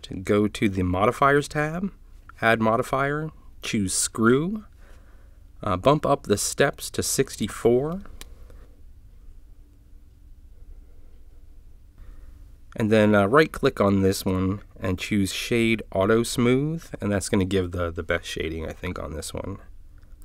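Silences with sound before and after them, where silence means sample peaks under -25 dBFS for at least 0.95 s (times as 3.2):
4.56–5.63
8.22–12.76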